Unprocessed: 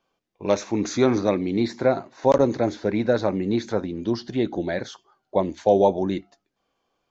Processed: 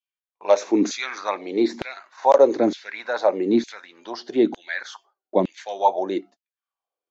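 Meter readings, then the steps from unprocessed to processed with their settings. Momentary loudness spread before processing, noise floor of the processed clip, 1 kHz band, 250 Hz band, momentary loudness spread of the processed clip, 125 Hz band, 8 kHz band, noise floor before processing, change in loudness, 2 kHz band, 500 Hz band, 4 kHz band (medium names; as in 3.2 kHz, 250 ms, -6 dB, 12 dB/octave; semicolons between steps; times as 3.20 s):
9 LU, under -85 dBFS, +4.0 dB, 0.0 dB, 17 LU, under -10 dB, no reading, -78 dBFS, +1.0 dB, +4.0 dB, +0.5 dB, +1.5 dB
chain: high-pass 86 Hz; gate with hold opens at -40 dBFS; LFO high-pass saw down 1.1 Hz 210–3000 Hz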